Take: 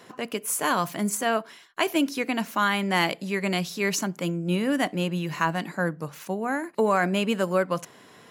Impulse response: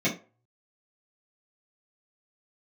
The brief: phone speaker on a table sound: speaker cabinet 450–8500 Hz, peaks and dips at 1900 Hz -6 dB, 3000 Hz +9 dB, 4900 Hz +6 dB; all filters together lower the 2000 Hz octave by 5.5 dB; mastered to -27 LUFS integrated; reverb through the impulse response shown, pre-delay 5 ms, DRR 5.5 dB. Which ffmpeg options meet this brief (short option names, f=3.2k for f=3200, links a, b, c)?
-filter_complex "[0:a]equalizer=f=2k:t=o:g=-6,asplit=2[a][b];[1:a]atrim=start_sample=2205,adelay=5[c];[b][c]afir=irnorm=-1:irlink=0,volume=-17.5dB[d];[a][d]amix=inputs=2:normalize=0,highpass=f=450:w=0.5412,highpass=f=450:w=1.3066,equalizer=f=1.9k:t=q:w=4:g=-6,equalizer=f=3k:t=q:w=4:g=9,equalizer=f=4.9k:t=q:w=4:g=6,lowpass=f=8.5k:w=0.5412,lowpass=f=8.5k:w=1.3066,volume=1dB"